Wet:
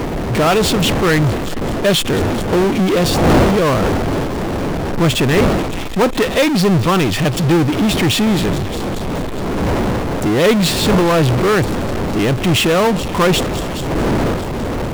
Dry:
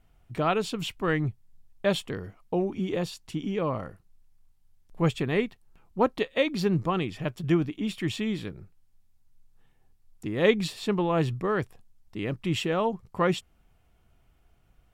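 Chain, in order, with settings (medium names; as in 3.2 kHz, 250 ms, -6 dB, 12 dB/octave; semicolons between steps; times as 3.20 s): wind noise 420 Hz -34 dBFS; feedback echo behind a high-pass 209 ms, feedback 71%, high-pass 3.8 kHz, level -18 dB; power-law waveshaper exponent 0.35; trim +2.5 dB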